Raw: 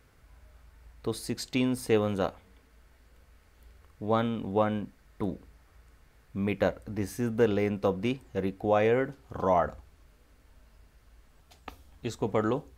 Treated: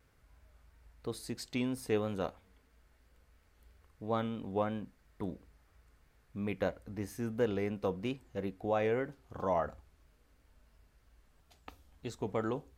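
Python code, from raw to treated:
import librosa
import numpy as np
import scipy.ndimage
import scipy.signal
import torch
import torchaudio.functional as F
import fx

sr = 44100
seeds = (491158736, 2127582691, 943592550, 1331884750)

y = fx.vibrato(x, sr, rate_hz=3.0, depth_cents=51.0)
y = y * 10.0 ** (-7.0 / 20.0)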